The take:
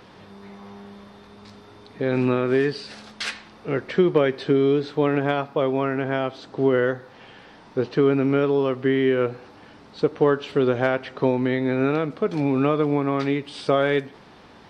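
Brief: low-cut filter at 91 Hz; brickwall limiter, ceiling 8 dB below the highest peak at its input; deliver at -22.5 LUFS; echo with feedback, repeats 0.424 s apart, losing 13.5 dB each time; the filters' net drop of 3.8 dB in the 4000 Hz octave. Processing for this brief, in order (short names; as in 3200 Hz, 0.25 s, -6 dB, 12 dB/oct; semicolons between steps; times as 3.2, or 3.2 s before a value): HPF 91 Hz; bell 4000 Hz -5 dB; limiter -15 dBFS; feedback echo 0.424 s, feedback 21%, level -13.5 dB; gain +3 dB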